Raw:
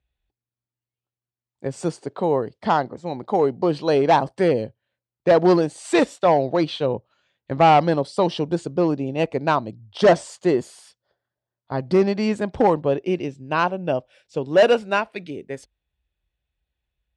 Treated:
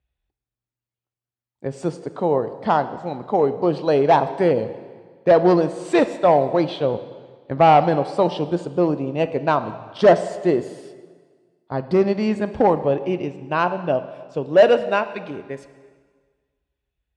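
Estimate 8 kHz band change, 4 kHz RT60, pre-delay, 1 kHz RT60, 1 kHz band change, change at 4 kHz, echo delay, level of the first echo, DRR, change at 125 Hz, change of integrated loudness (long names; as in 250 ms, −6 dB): can't be measured, 1.5 s, 8 ms, 1.6 s, +1.0 dB, −2.5 dB, no echo audible, no echo audible, 11.0 dB, +0.5 dB, +1.0 dB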